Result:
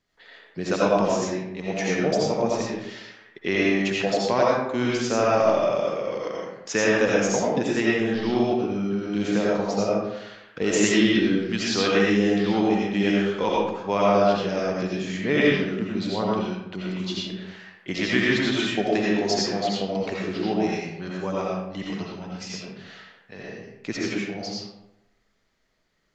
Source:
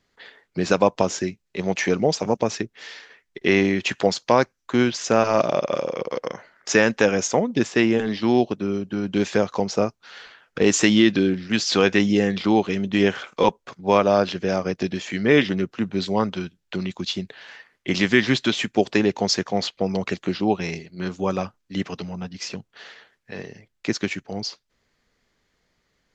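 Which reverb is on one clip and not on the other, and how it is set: algorithmic reverb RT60 0.9 s, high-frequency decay 0.6×, pre-delay 45 ms, DRR -5 dB; trim -7.5 dB

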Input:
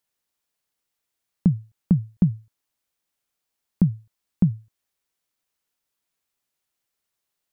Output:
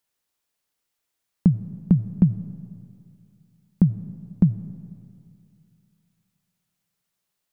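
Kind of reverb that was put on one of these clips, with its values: algorithmic reverb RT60 2.5 s, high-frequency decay 0.65×, pre-delay 45 ms, DRR 15 dB; trim +1.5 dB

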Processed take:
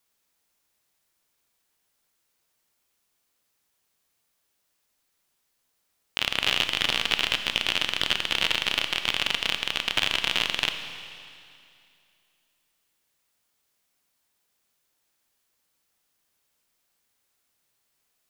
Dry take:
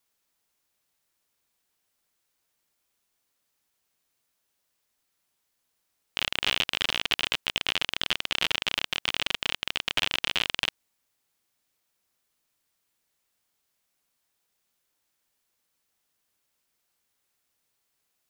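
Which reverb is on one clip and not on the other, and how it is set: Schroeder reverb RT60 2.5 s, combs from 27 ms, DRR 7.5 dB; trim +2 dB

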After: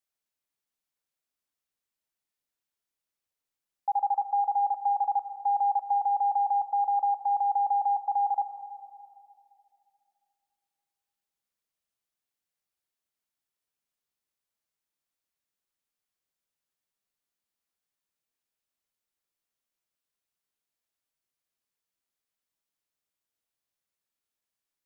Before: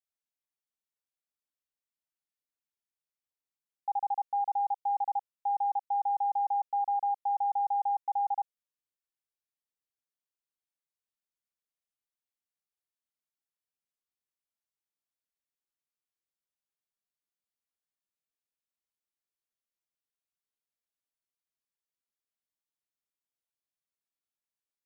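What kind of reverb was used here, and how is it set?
algorithmic reverb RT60 2.6 s, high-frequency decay 0.3×, pre-delay 45 ms, DRR 11 dB; trim +4.5 dB

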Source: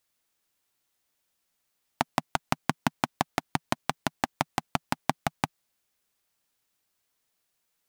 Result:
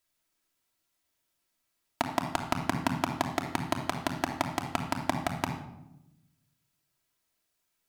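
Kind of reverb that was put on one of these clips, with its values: simulated room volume 3000 m³, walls furnished, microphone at 2.9 m; trim -3.5 dB

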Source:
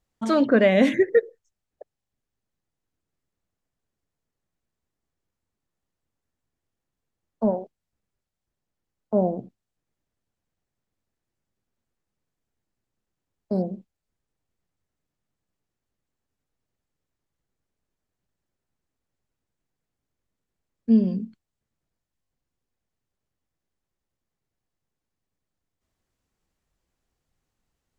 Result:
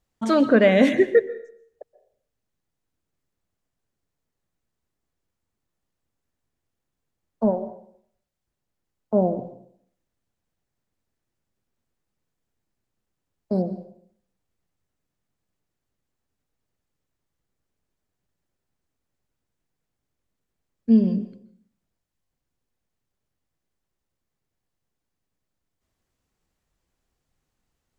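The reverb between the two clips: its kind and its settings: plate-style reverb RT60 0.61 s, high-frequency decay 0.8×, pre-delay 115 ms, DRR 14 dB; trim +1.5 dB

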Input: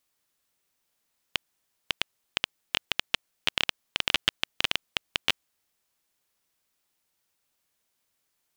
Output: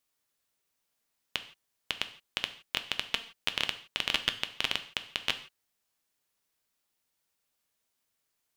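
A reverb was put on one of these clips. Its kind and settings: gated-style reverb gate 190 ms falling, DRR 8.5 dB; trim -4 dB

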